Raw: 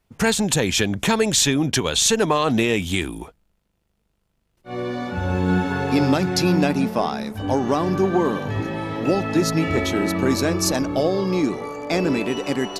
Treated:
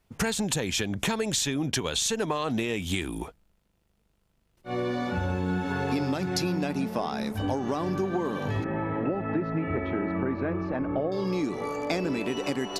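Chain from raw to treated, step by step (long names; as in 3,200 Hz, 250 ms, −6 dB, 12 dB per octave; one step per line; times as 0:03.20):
downward compressor, threshold −25 dBFS, peak gain reduction 11.5 dB
0:08.64–0:11.12: low-pass filter 2,100 Hz 24 dB per octave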